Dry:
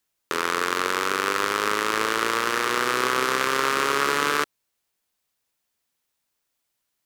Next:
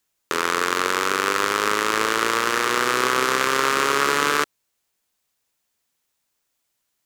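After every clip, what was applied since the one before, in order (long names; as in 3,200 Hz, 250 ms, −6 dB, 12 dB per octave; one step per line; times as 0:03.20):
parametric band 7,000 Hz +2.5 dB 0.42 octaves
level +2.5 dB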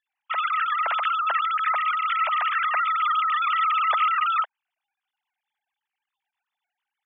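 three sine waves on the formant tracks
level −2 dB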